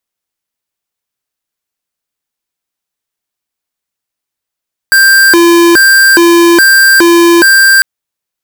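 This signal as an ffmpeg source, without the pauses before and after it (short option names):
-f lavfi -i "aevalsrc='0.596*(2*lt(mod((960.5*t+619.5/1.2*(0.5-abs(mod(1.2*t,1)-0.5))),1),0.5)-1)':d=2.9:s=44100"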